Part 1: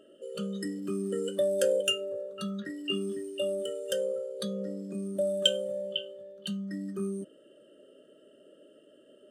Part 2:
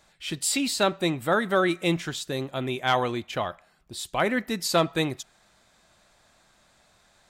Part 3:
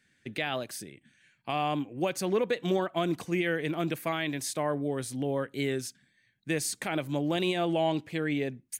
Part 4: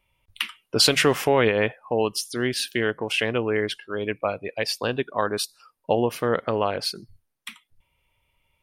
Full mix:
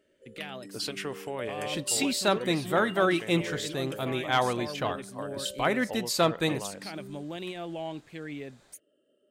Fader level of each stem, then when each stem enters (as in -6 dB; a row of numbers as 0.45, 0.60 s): -13.0, -2.0, -9.0, -16.5 dB; 0.00, 1.45, 0.00, 0.00 s